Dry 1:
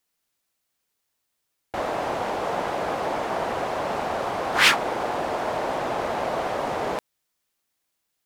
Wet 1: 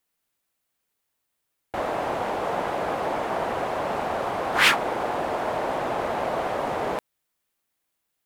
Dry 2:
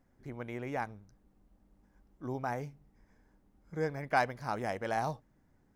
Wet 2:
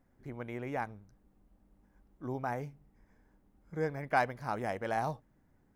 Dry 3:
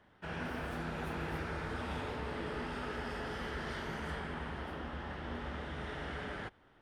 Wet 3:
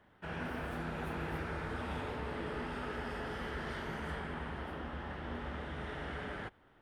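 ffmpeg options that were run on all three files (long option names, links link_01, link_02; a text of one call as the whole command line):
ffmpeg -i in.wav -af "equalizer=frequency=5400:width_type=o:width=1.2:gain=-4.5" out.wav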